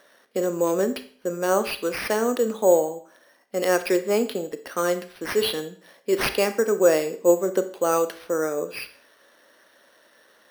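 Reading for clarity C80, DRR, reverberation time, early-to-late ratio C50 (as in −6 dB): 17.5 dB, 10.0 dB, 0.45 s, 13.0 dB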